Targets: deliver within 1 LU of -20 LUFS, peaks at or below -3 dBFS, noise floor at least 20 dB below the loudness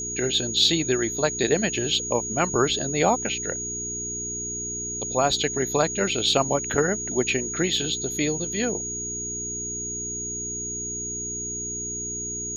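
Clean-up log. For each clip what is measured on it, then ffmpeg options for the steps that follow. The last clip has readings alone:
hum 60 Hz; harmonics up to 420 Hz; hum level -36 dBFS; steady tone 6700 Hz; tone level -29 dBFS; loudness -24.5 LUFS; peak -5.5 dBFS; loudness target -20.0 LUFS
-> -af "bandreject=f=60:t=h:w=4,bandreject=f=120:t=h:w=4,bandreject=f=180:t=h:w=4,bandreject=f=240:t=h:w=4,bandreject=f=300:t=h:w=4,bandreject=f=360:t=h:w=4,bandreject=f=420:t=h:w=4"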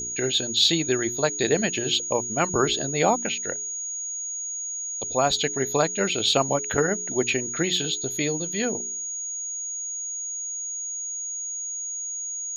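hum none; steady tone 6700 Hz; tone level -29 dBFS
-> -af "bandreject=f=6.7k:w=30"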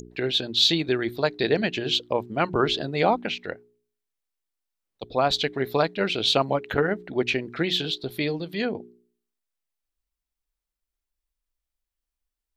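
steady tone none; loudness -24.5 LUFS; peak -6.0 dBFS; loudness target -20.0 LUFS
-> -af "volume=4.5dB,alimiter=limit=-3dB:level=0:latency=1"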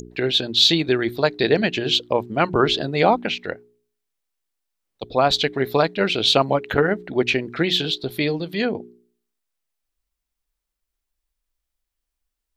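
loudness -20.0 LUFS; peak -3.0 dBFS; noise floor -82 dBFS

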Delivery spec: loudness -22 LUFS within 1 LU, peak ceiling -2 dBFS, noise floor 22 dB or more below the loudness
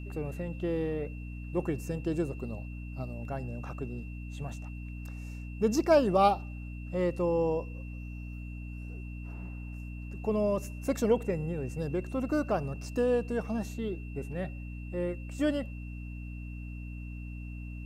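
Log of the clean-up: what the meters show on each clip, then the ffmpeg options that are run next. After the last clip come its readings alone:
hum 60 Hz; harmonics up to 300 Hz; hum level -38 dBFS; steady tone 2700 Hz; tone level -52 dBFS; loudness -33.0 LUFS; peak -13.0 dBFS; loudness target -22.0 LUFS
-> -af "bandreject=f=60:t=h:w=6,bandreject=f=120:t=h:w=6,bandreject=f=180:t=h:w=6,bandreject=f=240:t=h:w=6,bandreject=f=300:t=h:w=6"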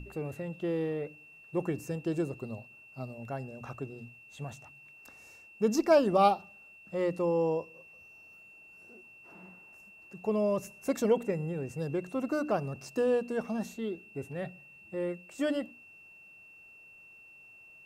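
hum none; steady tone 2700 Hz; tone level -52 dBFS
-> -af "bandreject=f=2.7k:w=30"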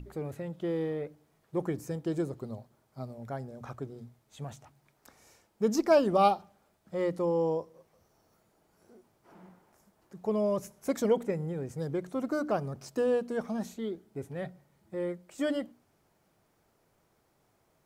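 steady tone none; loudness -32.0 LUFS; peak -13.5 dBFS; loudness target -22.0 LUFS
-> -af "volume=10dB"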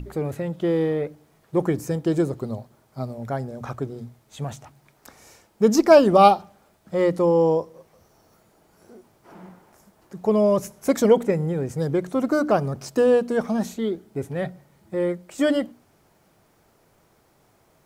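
loudness -22.0 LUFS; peak -3.5 dBFS; noise floor -61 dBFS

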